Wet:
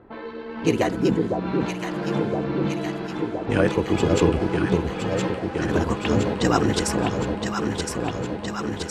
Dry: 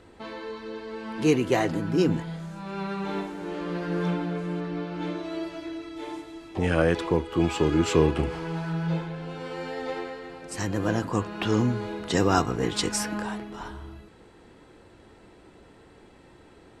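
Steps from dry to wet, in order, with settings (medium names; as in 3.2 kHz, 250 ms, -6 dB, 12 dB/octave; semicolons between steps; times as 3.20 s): granular stretch 0.53×, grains 32 ms; level-controlled noise filter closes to 1.3 kHz, open at -25 dBFS; echo whose repeats swap between lows and highs 508 ms, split 900 Hz, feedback 85%, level -3 dB; trim +3.5 dB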